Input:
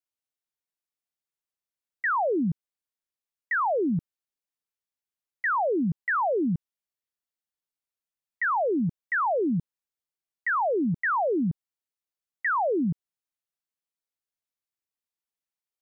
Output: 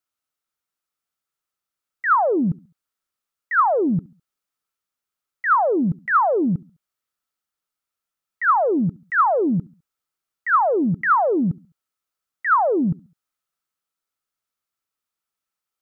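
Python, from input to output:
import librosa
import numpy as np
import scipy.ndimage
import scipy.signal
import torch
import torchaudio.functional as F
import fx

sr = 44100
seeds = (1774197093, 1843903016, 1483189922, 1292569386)

y = fx.peak_eq(x, sr, hz=1300.0, db=12.0, octaves=0.26)
y = fx.transient(y, sr, attack_db=-6, sustain_db=1)
y = fx.echo_feedback(y, sr, ms=69, feedback_pct=42, wet_db=-24.0)
y = y * 10.0 ** (5.5 / 20.0)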